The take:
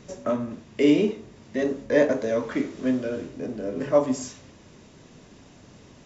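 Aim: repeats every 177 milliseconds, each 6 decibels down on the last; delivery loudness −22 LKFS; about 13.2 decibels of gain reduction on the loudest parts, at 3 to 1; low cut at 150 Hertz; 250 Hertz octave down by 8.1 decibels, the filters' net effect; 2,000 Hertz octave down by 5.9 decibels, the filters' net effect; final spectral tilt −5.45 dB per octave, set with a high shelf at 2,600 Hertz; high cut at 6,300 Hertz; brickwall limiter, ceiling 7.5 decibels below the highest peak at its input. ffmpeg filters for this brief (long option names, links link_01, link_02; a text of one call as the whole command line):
ffmpeg -i in.wav -af "highpass=150,lowpass=6300,equalizer=frequency=250:width_type=o:gain=-9,equalizer=frequency=2000:width_type=o:gain=-4,highshelf=frequency=2600:gain=-7,acompressor=threshold=-35dB:ratio=3,alimiter=level_in=6.5dB:limit=-24dB:level=0:latency=1,volume=-6.5dB,aecho=1:1:177|354|531|708|885|1062:0.501|0.251|0.125|0.0626|0.0313|0.0157,volume=18dB" out.wav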